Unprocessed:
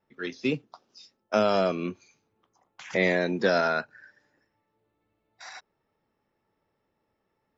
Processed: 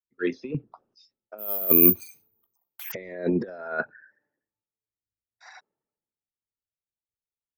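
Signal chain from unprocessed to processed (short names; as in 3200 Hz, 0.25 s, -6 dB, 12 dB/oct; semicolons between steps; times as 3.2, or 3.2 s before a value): formant sharpening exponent 1.5; negative-ratio compressor -29 dBFS, ratio -0.5; 1.38–2.92 careless resampling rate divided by 3×, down none, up zero stuff; three-band expander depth 100%; gain -2.5 dB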